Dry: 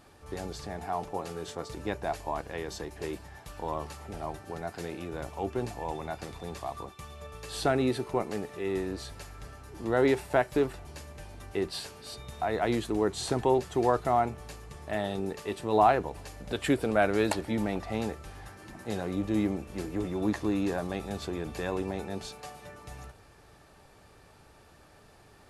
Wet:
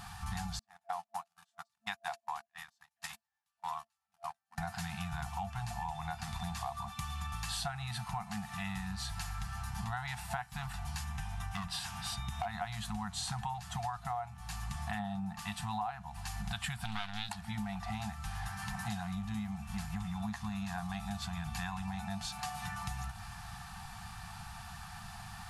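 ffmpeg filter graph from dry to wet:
-filter_complex "[0:a]asettb=1/sr,asplit=3[a][b][c];[a]atrim=end=0.594[d];[b]atrim=start=0.59:end=4.58,asetpts=PTS-STARTPTS,afade=t=in:d=0.004:c=qsin,afade=t=out:st=3.986:d=0.004:c=qsin,agate=range=-47dB:threshold=-34dB:ratio=16:release=100:detection=peak,highpass=f=1.4k:p=1[e];[c]atrim=start=4.576[f];[d][e]acrossfade=d=0.004:c1=hsin:c2=qsin[g];[g][f]acrossfade=d=0.004:c1=qsin:c2=hsin,asettb=1/sr,asplit=3[h][i][j];[h]atrim=end=11.044[k];[i]atrim=start=11.04:end=12.46,asetpts=PTS-STARTPTS,afade=t=in:d=0.004:c=qsin,afade=t=out:st=1.416:d=0.004:c=qsin,highshelf=f=5.1k:g=-4.5,bandreject=f=4.4k:w=7.8,asoftclip=type=hard:threshold=-28dB[l];[j]atrim=start=12.456[m];[k][l]acrossfade=d=0.004:c1=hsin:c2=qsin[n];[n][m]acrossfade=d=0.004:c1=qsin:c2=hsin,asettb=1/sr,asplit=3[o][p][q];[o]atrim=end=14.994[r];[p]atrim=start=14.99:end=15.39,asetpts=PTS-STARTPTS,afade=t=in:d=0.004:c=qsin,afade=t=out:st=0.396:d=0.004:c=qsin,highpass=f=160:p=1,tiltshelf=f=1.3k:g=7.5[s];[q]atrim=start=15.386[t];[r][s]acrossfade=d=0.004:c1=hsin:c2=qsin[u];[u][t]acrossfade=d=0.004:c1=qsin:c2=hsin,asettb=1/sr,asplit=3[v][w][x];[v]atrim=end=16.854[y];[w]atrim=start=16.85:end=17.29,asetpts=PTS-STARTPTS,afade=t=in:d=0.004:c=qsin,afade=t=out:st=0.436:d=0.004:c=qsin,aeval=exprs='max(val(0),0)':c=same,equalizer=f=3.6k:w=1.4:g=15[z];[x]atrim=start=17.286[aa];[y][z]acrossfade=d=0.004:c1=hsin:c2=qsin[ab];[ab][aa]acrossfade=d=0.004:c1=qsin:c2=hsin,afftfilt=real='re*(1-between(b*sr/4096,220,680))':imag='im*(1-between(b*sr/4096,220,680))':win_size=4096:overlap=0.75,equalizer=f=2.2k:t=o:w=0.32:g=-3.5,acompressor=threshold=-47dB:ratio=10,volume=11.5dB"

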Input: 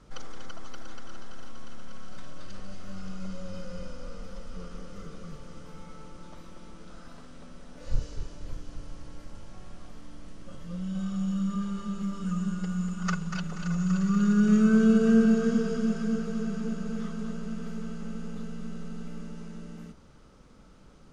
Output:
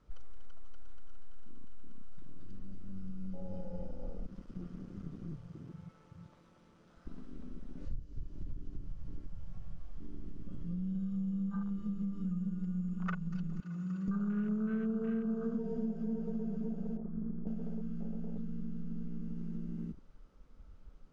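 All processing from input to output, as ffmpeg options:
-filter_complex "[0:a]asettb=1/sr,asplit=3[a][b][c];[a]atrim=end=4.264[d];[b]atrim=start=4.26:end=7.07,asetpts=PTS-STARTPTS,afade=t=in:d=0.004:c=qsin,afade=t=out:st=2.806:d=0.004:c=qsin,highpass=f=94:p=1,equalizer=f=130:w=3.6:g=8.5,aeval=exprs='clip(val(0),-1,0.00251)':c=same[e];[c]atrim=start=7.066[f];[d][e]acrossfade=d=0.004:c1=hsin:c2=qsin[g];[g][f]acrossfade=d=0.004:c1=qsin:c2=hsin,asettb=1/sr,asplit=3[h][i][j];[h]atrim=end=13.604[k];[i]atrim=start=13.6:end=14.08,asetpts=PTS-STARTPTS,afade=t=in:d=0.004:c=qsin,afade=t=out:st=0.476:d=0.004:c=qsin,highpass=f=960:p=1,highshelf=f=3.3k:g=-9.5[l];[j]atrim=start=14.076[m];[k][l]acrossfade=d=0.004:c1=hsin:c2=qsin[n];[n][m]acrossfade=d=0.004:c1=qsin:c2=hsin,asettb=1/sr,asplit=3[o][p][q];[o]atrim=end=16.974[r];[p]atrim=start=16.97:end=17.47,asetpts=PTS-STARTPTS,afade=t=in:d=0.004:c=qsin,afade=t=out:st=0.496:d=0.004:c=qsin,lowpass=f=1.3k:w=0.5412,lowpass=f=1.3k:w=1.3066,aeval=exprs='(tanh(28.2*val(0)+0.5)-tanh(0.5))/28.2':c=same[s];[q]atrim=start=17.466[t];[r][s]acrossfade=d=0.004:c1=hsin:c2=qsin[u];[u][t]acrossfade=d=0.004:c1=qsin:c2=hsin,afwtdn=0.0158,highshelf=f=5.9k:g=-10,acompressor=threshold=-38dB:ratio=6,volume=4.5dB"

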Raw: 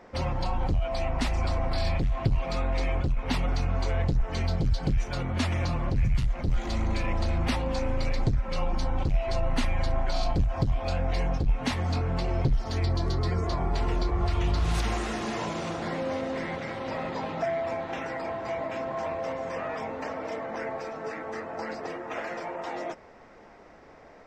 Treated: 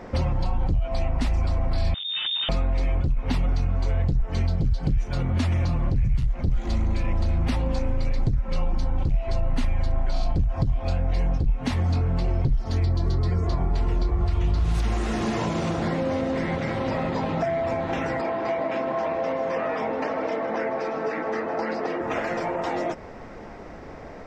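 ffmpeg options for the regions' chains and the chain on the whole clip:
-filter_complex "[0:a]asettb=1/sr,asplit=3[a][b][c];[a]atrim=end=1.944[d];[b]atrim=start=1.94:end=2.49,asetpts=PTS-STARTPTS,afade=t=in:d=0.004:c=qsin,afade=t=out:st=0.546:d=0.004:c=qsin,asoftclip=type=hard:threshold=-31.5dB,lowpass=f=3.1k:t=q:w=0.5098,lowpass=f=3.1k:t=q:w=0.6013,lowpass=f=3.1k:t=q:w=0.9,lowpass=f=3.1k:t=q:w=2.563,afreqshift=-3700[e];[c]atrim=start=2.486[f];[d][e]acrossfade=d=0.004:c1=hsin:c2=qsin[g];[g][f]acrossfade=d=0.004:c1=qsin:c2=hsin,asettb=1/sr,asplit=3[h][i][j];[h]atrim=end=18.214[k];[i]atrim=start=18.21:end=22.01,asetpts=PTS-STARTPTS,afade=t=in:d=0.004:c=qsin,afade=t=out:st=3.796:d=0.004:c=qsin,acrossover=split=200 6100:gain=0.158 1 0.0631[l][m][n];[l][m][n]amix=inputs=3:normalize=0,aecho=1:1:157:0.211,atrim=end_sample=167580[o];[j]atrim=start=22.006[p];[k][o]acrossfade=d=0.004:c1=hsin:c2=qsin[q];[q][p]acrossfade=d=0.004:c1=qsin:c2=hsin,lowshelf=f=310:g=9,acompressor=threshold=-32dB:ratio=3,volume=8dB"

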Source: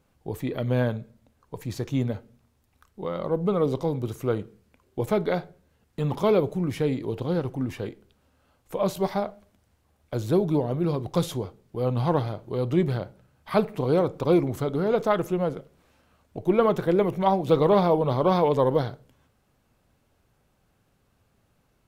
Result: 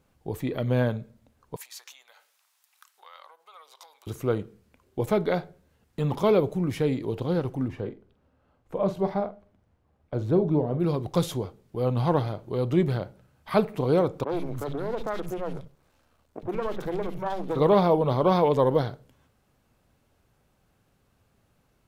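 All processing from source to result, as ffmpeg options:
-filter_complex "[0:a]asettb=1/sr,asplit=3[a][b][c];[a]atrim=end=1.564[d];[b]atrim=start=1.56:end=4.07,asetpts=PTS-STARTPTS,afade=t=in:d=0.004:c=qsin,afade=t=out:st=2.506:d=0.004:c=qsin,highshelf=f=2k:g=10,acompressor=threshold=-37dB:ratio=8:attack=3.2:release=140:knee=1:detection=peak,highpass=f=850:w=0.5412,highpass=f=850:w=1.3066[e];[c]atrim=start=4.066[f];[d][e]acrossfade=d=0.004:c1=hsin:c2=qsin[g];[g][f]acrossfade=d=0.004:c1=qsin:c2=hsin,asettb=1/sr,asplit=3[h][i][j];[h]atrim=end=7.684[k];[i]atrim=start=7.68:end=10.8,asetpts=PTS-STARTPTS,afade=t=in:d=0.004:c=qsin,afade=t=out:st=3.116:d=0.004:c=qsin,lowpass=f=1.1k:p=1,asplit=2[l][m];[m]adelay=46,volume=-12dB[n];[l][n]amix=inputs=2:normalize=0,atrim=end_sample=137592[o];[j]atrim=start=10.796[p];[k][o]acrossfade=d=0.004:c1=hsin:c2=qsin[q];[q][p]acrossfade=d=0.004:c1=qsin:c2=hsin,asettb=1/sr,asplit=3[r][s][t];[r]atrim=end=14.244[u];[s]atrim=start=14.24:end=17.56,asetpts=PTS-STARTPTS,afade=t=in:d=0.004:c=qsin,afade=t=out:st=3.316:d=0.004:c=qsin,aeval=exprs='if(lt(val(0),0),0.251*val(0),val(0))':c=same,acrossover=split=200|2300[v][w][x];[x]adelay=40[y];[v]adelay=70[z];[z][w][y]amix=inputs=3:normalize=0,atrim=end_sample=146412,acompressor=threshold=-27dB:ratio=2.5:attack=3.2:release=140:knee=1:detection=peak[aa];[t]atrim=start=17.556[ab];[u][aa]acrossfade=d=0.004:c1=hsin:c2=qsin[ac];[ac][ab]acrossfade=d=0.004:c1=qsin:c2=hsin"

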